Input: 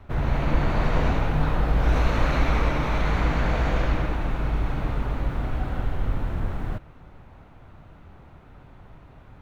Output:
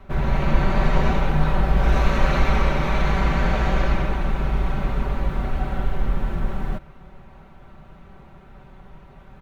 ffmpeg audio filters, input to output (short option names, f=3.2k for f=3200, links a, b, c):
-af "aecho=1:1:5.2:0.65,volume=1.5dB"